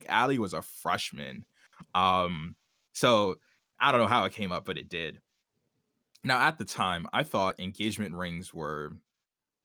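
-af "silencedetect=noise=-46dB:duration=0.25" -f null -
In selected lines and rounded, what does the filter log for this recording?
silence_start: 1.43
silence_end: 1.80 | silence_duration: 0.37
silence_start: 2.52
silence_end: 2.95 | silence_duration: 0.43
silence_start: 3.34
silence_end: 3.80 | silence_duration: 0.46
silence_start: 5.16
silence_end: 6.16 | silence_duration: 0.99
silence_start: 8.97
silence_end: 9.65 | silence_duration: 0.68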